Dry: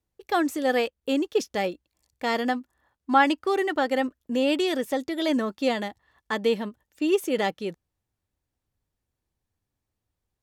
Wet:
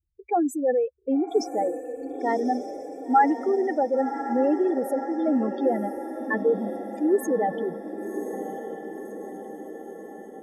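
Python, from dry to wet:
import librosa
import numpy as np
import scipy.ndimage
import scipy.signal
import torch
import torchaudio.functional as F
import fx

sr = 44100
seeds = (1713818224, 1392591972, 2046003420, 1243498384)

y = fx.spec_expand(x, sr, power=3.3)
y = fx.echo_diffused(y, sr, ms=1071, feedback_pct=59, wet_db=-9.0)
y = y * 10.0 ** (1.5 / 20.0)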